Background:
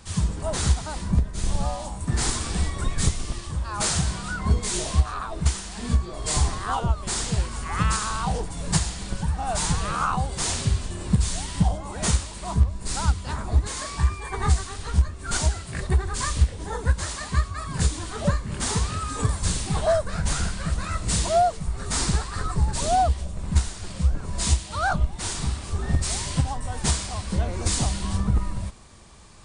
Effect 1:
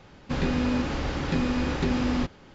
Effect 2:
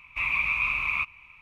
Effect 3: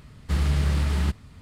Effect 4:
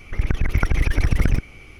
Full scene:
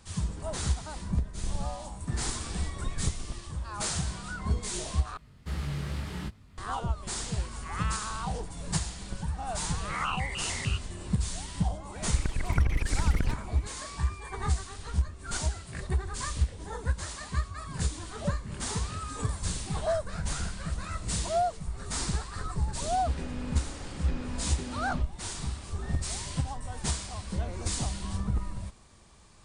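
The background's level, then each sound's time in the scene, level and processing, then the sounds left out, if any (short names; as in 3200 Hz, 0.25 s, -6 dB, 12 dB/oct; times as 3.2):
background -7.5 dB
5.17 replace with 3 -5 dB + chorus 2.5 Hz, delay 18.5 ms, depth 3.1 ms
9.74 add 2 -11.5 dB + shaped vibrato square 3.3 Hz, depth 250 cents
11.95 add 4 -9.5 dB
22.76 add 1 -13 dB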